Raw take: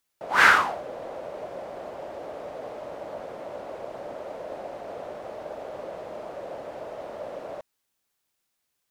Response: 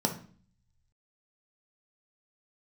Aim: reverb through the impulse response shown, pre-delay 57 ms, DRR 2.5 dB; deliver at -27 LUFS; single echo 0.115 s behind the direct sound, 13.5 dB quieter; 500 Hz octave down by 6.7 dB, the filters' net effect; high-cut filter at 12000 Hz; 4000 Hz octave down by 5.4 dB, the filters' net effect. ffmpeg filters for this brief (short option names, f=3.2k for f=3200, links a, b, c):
-filter_complex "[0:a]lowpass=12k,equalizer=f=500:t=o:g=-8.5,equalizer=f=4k:t=o:g=-7.5,aecho=1:1:115:0.211,asplit=2[a][b];[1:a]atrim=start_sample=2205,adelay=57[c];[b][c]afir=irnorm=-1:irlink=0,volume=-10.5dB[d];[a][d]amix=inputs=2:normalize=0,volume=2dB"